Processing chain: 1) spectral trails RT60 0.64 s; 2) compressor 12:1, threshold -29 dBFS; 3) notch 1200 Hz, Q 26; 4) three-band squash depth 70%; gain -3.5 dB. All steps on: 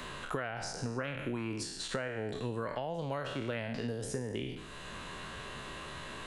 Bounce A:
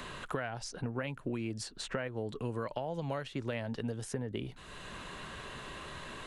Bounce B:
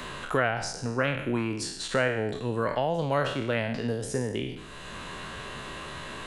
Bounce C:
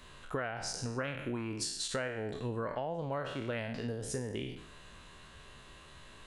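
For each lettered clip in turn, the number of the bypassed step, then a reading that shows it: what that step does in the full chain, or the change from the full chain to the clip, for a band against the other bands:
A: 1, 125 Hz band +2.0 dB; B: 2, mean gain reduction 4.5 dB; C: 4, crest factor change -2.5 dB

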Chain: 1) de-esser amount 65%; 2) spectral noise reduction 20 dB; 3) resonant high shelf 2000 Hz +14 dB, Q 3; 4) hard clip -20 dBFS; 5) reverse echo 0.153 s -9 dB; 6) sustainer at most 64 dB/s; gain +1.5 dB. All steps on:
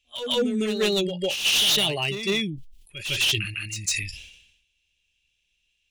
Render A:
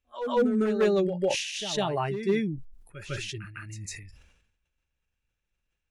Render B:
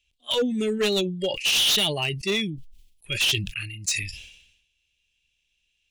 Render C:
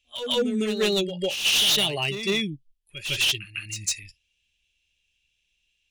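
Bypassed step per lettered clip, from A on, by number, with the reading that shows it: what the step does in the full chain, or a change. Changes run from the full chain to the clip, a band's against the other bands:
3, loudness change -4.5 LU; 5, momentary loudness spread change -2 LU; 6, crest factor change -4.0 dB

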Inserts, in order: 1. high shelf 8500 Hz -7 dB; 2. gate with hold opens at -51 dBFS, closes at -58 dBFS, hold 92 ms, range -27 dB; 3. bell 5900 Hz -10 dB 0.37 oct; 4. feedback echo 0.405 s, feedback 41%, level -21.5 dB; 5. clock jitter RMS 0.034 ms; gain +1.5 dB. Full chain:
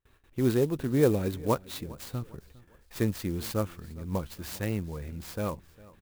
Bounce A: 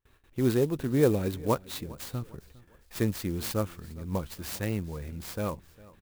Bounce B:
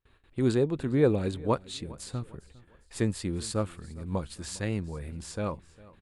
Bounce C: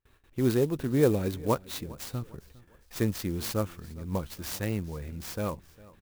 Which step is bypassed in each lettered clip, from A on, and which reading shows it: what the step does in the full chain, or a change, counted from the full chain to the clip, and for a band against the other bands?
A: 1, 8 kHz band +2.0 dB; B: 5, 8 kHz band +2.5 dB; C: 3, 8 kHz band +2.5 dB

